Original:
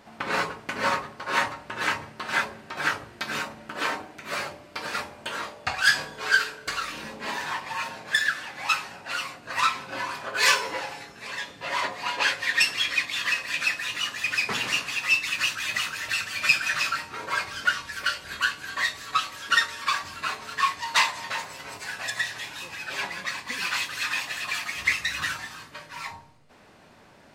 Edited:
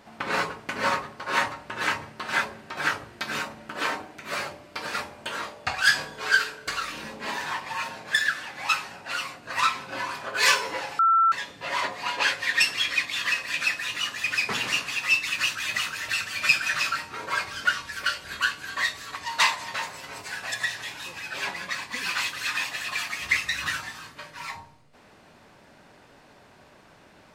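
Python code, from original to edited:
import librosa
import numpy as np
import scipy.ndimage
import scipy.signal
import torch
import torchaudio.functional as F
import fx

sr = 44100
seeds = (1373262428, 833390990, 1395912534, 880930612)

y = fx.edit(x, sr, fx.bleep(start_s=10.99, length_s=0.33, hz=1340.0, db=-16.0),
    fx.cut(start_s=19.15, length_s=1.56), tone=tone)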